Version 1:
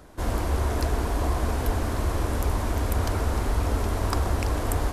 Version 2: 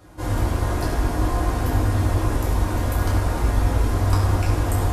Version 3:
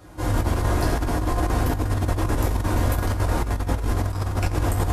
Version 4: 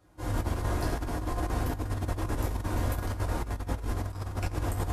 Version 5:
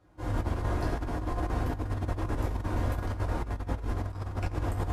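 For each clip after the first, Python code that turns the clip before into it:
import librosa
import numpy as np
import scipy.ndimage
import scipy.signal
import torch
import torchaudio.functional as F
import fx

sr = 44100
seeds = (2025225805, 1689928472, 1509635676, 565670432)

y1 = fx.rev_fdn(x, sr, rt60_s=0.99, lf_ratio=1.45, hf_ratio=0.8, size_ms=57.0, drr_db=-5.5)
y1 = y1 * librosa.db_to_amplitude(-4.0)
y2 = fx.over_compress(y1, sr, threshold_db=-21.0, ratio=-0.5)
y3 = fx.upward_expand(y2, sr, threshold_db=-37.0, expansion=1.5)
y3 = y3 * librosa.db_to_amplitude(-7.0)
y4 = fx.lowpass(y3, sr, hz=3000.0, slope=6)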